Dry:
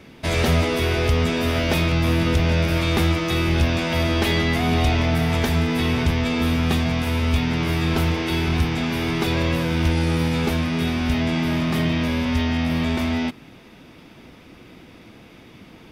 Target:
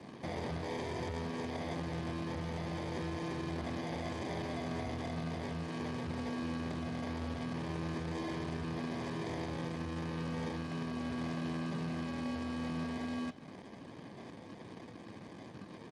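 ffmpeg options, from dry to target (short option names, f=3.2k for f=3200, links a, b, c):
-filter_complex "[0:a]highpass=100,asplit=3[a][b][c];[a]afade=t=out:st=8.85:d=0.02[d];[b]highshelf=f=8.6k:g=10,afade=t=in:st=8.85:d=0.02,afade=t=out:st=11.47:d=0.02[e];[c]afade=t=in:st=11.47:d=0.02[f];[d][e][f]amix=inputs=3:normalize=0,acompressor=threshold=-31dB:ratio=5,volume=31dB,asoftclip=hard,volume=-31dB,aeval=exprs='val(0)+0.00141*(sin(2*PI*50*n/s)+sin(2*PI*2*50*n/s)/2+sin(2*PI*3*50*n/s)/3+sin(2*PI*4*50*n/s)/4+sin(2*PI*5*50*n/s)/5)':c=same,acrusher=samples=32:mix=1:aa=0.000001,flanger=delay=9.5:depth=3.8:regen=-82:speed=0.2:shape=sinusoidal,aresample=22050,aresample=44100,volume=1dB" -ar 32000 -c:a libspeex -b:a 24k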